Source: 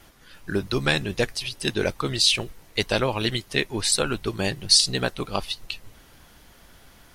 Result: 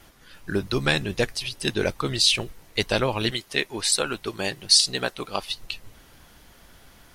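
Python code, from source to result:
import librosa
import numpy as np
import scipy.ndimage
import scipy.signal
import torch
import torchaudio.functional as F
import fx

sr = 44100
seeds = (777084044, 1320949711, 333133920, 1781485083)

y = fx.low_shelf(x, sr, hz=200.0, db=-12.0, at=(3.31, 5.5))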